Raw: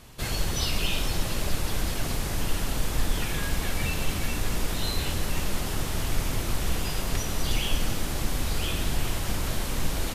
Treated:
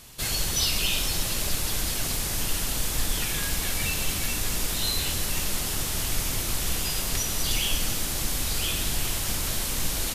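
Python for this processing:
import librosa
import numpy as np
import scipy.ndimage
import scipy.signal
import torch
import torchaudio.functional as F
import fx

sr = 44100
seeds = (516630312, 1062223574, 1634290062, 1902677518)

y = fx.high_shelf(x, sr, hz=2800.0, db=12.0)
y = y * 10.0 ** (-3.0 / 20.0)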